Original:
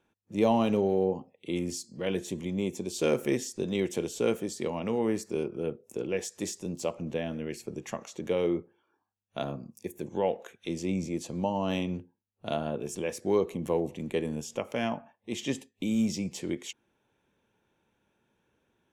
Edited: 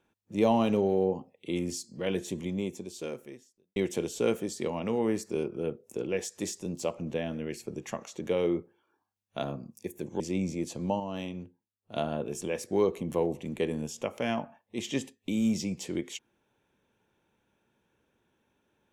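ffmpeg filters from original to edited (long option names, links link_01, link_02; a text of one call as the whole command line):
ffmpeg -i in.wav -filter_complex "[0:a]asplit=5[link_01][link_02][link_03][link_04][link_05];[link_01]atrim=end=3.76,asetpts=PTS-STARTPTS,afade=type=out:start_time=2.48:duration=1.28:curve=qua[link_06];[link_02]atrim=start=3.76:end=10.202,asetpts=PTS-STARTPTS,afade=type=in:duration=0.004:curve=hsin[link_07];[link_03]atrim=start=10.738:end=11.542[link_08];[link_04]atrim=start=11.538:end=12.502,asetpts=PTS-STARTPTS,volume=-6.5dB[link_09];[link_05]atrim=start=12.498[link_10];[link_06][link_07]concat=n=2:v=0:a=1[link_11];[link_11][link_08]acrossfade=duration=0.004:curve1=hsin:curve2=hsin[link_12];[link_12][link_09]acrossfade=duration=0.004:curve1=hsin:curve2=hsin[link_13];[link_13][link_10]acrossfade=duration=0.004:curve1=hsin:curve2=hsin" out.wav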